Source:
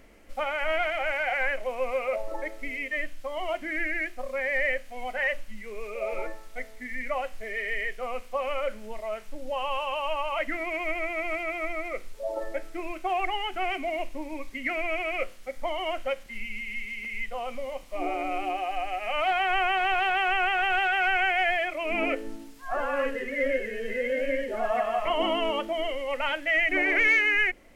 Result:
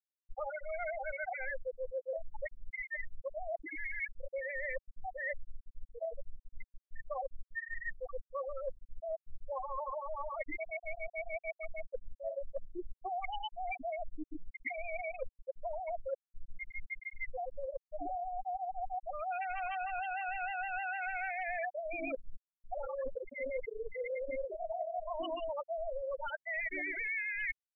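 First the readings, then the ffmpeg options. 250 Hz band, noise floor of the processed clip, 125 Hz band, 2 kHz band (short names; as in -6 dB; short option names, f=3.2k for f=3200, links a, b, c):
-15.0 dB, under -85 dBFS, n/a, -13.0 dB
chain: -af "afftfilt=real='re*gte(hypot(re,im),0.2)':imag='im*gte(hypot(re,im),0.2)':win_size=1024:overlap=0.75,areverse,acompressor=threshold=-36dB:ratio=10,areverse,volume=1dB"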